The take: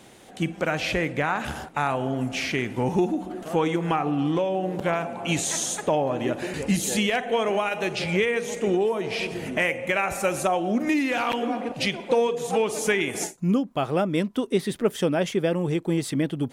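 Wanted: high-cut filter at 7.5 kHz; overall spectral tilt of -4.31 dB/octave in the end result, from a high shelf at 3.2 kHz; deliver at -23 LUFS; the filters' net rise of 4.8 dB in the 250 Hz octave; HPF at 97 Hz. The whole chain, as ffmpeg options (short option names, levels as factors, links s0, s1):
-af "highpass=97,lowpass=7500,equalizer=f=250:t=o:g=6.5,highshelf=f=3200:g=8.5,volume=0.891"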